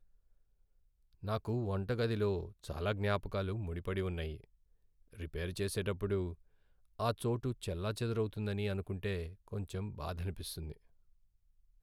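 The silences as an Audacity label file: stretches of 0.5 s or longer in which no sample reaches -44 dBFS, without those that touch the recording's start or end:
4.440000	5.180000	silence
6.340000	6.990000	silence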